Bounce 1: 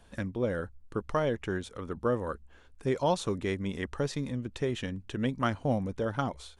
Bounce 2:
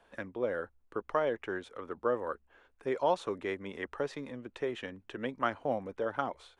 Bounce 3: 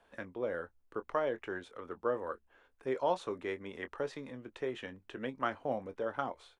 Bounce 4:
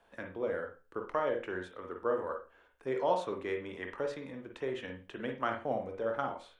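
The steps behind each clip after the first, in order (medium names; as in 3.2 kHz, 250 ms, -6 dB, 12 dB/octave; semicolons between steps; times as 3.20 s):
three-band isolator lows -17 dB, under 320 Hz, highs -13 dB, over 2.9 kHz
doubling 23 ms -12 dB; trim -3 dB
reverberation, pre-delay 44 ms, DRR 4 dB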